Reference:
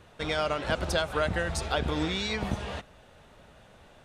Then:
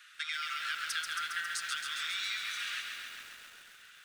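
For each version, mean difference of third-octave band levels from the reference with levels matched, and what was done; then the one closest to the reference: 16.5 dB: steep high-pass 1300 Hz 72 dB/oct; compressor 5:1, threshold -41 dBFS, peak gain reduction 13.5 dB; on a send: tape echo 0.215 s, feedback 61%, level -11 dB, low-pass 3400 Hz; on the sum: lo-fi delay 0.136 s, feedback 80%, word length 10-bit, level -4.5 dB; gain +5.5 dB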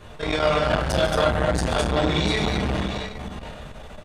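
5.5 dB: in parallel at +2 dB: compressor, threshold -38 dBFS, peak gain reduction 14.5 dB; on the sum: tapped delay 0.145/0.225/0.7/0.8 s -11.5/-4.5/-11.5/-17 dB; shoebox room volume 65 m³, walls mixed, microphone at 1.3 m; core saturation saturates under 500 Hz; gain -1.5 dB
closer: second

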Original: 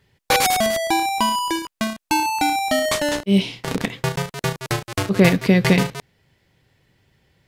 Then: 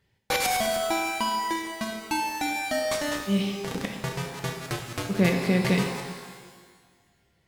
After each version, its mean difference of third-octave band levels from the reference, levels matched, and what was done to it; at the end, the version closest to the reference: 5.0 dB: shimmer reverb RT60 1.5 s, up +12 st, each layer -8 dB, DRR 3.5 dB; gain -9 dB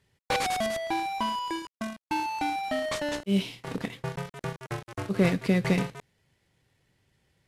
3.5 dB: CVSD 64 kbps; gain -8.5 dB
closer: second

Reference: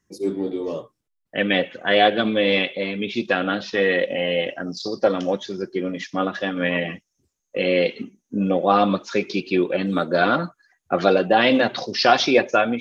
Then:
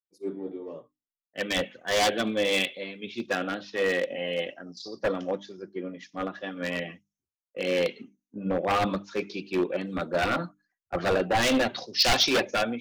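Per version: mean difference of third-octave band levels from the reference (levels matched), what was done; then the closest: 5.0 dB: notches 50/100/150/200/250/300 Hz; wavefolder -13 dBFS; three-band expander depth 100%; gain -6 dB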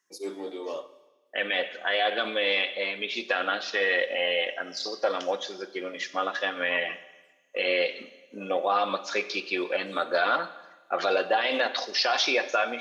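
7.0 dB: HPF 670 Hz 12 dB/oct; limiter -14.5 dBFS, peak gain reduction 10.5 dB; Schroeder reverb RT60 1.2 s, combs from 30 ms, DRR 14 dB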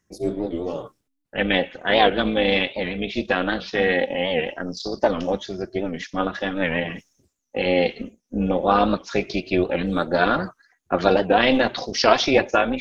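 2.0 dB: reverse; upward compressor, threshold -29 dBFS; reverse; AM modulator 270 Hz, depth 45%; record warp 78 rpm, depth 160 cents; gain +2 dB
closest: third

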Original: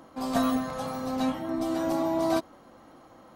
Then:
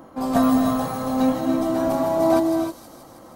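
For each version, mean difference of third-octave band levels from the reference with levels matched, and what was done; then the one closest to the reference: 4.5 dB: bell 4000 Hz -8 dB 2.6 oct; thin delay 0.159 s, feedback 70%, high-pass 4400 Hz, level -5.5 dB; non-linear reverb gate 0.33 s rising, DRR 4 dB; gain +7.5 dB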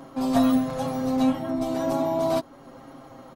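2.5 dB: low shelf 440 Hz +4 dB; in parallel at -0.5 dB: compressor, threshold -38 dBFS, peak gain reduction 17.5 dB; on the sum: comb 7.4 ms, depth 75%; gain -2 dB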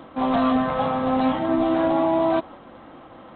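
6.0 dB: dynamic EQ 820 Hz, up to +4 dB, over -40 dBFS, Q 1.3; limiter -20.5 dBFS, peak gain reduction 9 dB; gain +8.5 dB; G.726 24 kbps 8000 Hz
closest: second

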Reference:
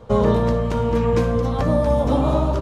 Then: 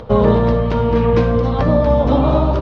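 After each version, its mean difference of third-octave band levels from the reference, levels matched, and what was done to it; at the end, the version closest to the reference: 2.5 dB: LPF 4700 Hz 24 dB/oct; upward compressor, threshold -33 dBFS; gain +4.5 dB; Opus 32 kbps 48000 Hz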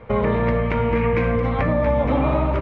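4.5 dB: limiter -11.5 dBFS, peak gain reduction 5.5 dB; synth low-pass 2200 Hz, resonance Q 5.7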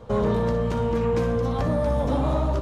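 1.0 dB: in parallel at 0 dB: limiter -17 dBFS, peak gain reduction 10.5 dB; on the sum: flutter echo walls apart 10.7 m, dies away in 0.3 s; soft clip -8 dBFS, distortion -19 dB; gain -7 dB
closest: third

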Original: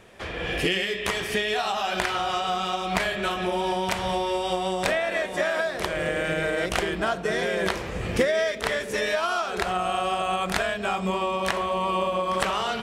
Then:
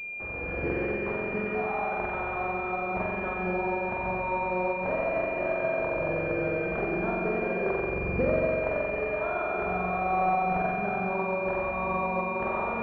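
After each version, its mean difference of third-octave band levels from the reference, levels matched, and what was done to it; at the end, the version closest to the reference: 11.0 dB: spring tank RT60 2.6 s, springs 44 ms, chirp 25 ms, DRR -4 dB; pulse-width modulation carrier 2400 Hz; gain -6.5 dB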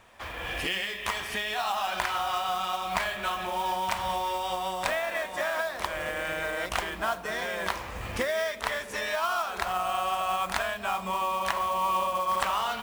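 5.0 dB: fifteen-band EQ 160 Hz -10 dB, 400 Hz -10 dB, 1000 Hz +7 dB; modulation noise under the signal 19 dB; gain -4.5 dB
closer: second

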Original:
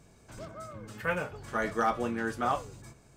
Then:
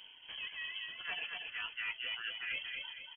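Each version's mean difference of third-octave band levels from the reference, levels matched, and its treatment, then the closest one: 17.0 dB: reverb removal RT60 1.2 s; reverse; compressor 6:1, threshold -43 dBFS, peak gain reduction 17.5 dB; reverse; feedback echo 0.234 s, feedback 42%, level -4.5 dB; inverted band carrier 3200 Hz; gain +3.5 dB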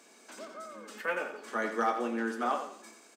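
7.0 dB: Chebyshev high-pass 220 Hz, order 5; high shelf 7700 Hz -5 dB; on a send: feedback echo 87 ms, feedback 35%, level -8.5 dB; on the sum: mismatched tape noise reduction encoder only; gain -1 dB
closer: second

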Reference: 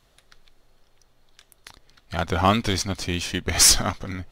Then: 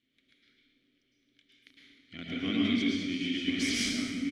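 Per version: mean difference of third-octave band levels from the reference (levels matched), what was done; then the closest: 10.0 dB: vowel filter i; on a send: echo 1.044 s -12.5 dB; on the sum: plate-style reverb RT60 1.2 s, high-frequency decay 1×, pre-delay 95 ms, DRR -5 dB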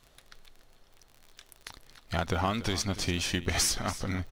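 5.5 dB: compressor 12:1, threshold -25 dBFS, peak gain reduction 14.5 dB; crackle 48/s -41 dBFS; on a send: echo 0.287 s -15 dB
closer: second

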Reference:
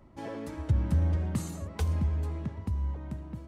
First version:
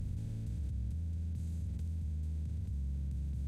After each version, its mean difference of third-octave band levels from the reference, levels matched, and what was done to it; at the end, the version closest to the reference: 9.0 dB: per-bin compression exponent 0.2; level quantiser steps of 17 dB; passive tone stack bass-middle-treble 10-0-1; gain +7 dB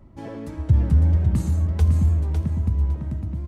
5.0 dB: low shelf 270 Hz +10 dB; on a send: feedback echo 0.555 s, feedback 22%, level -6 dB; on the sum: record warp 45 rpm, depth 100 cents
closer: second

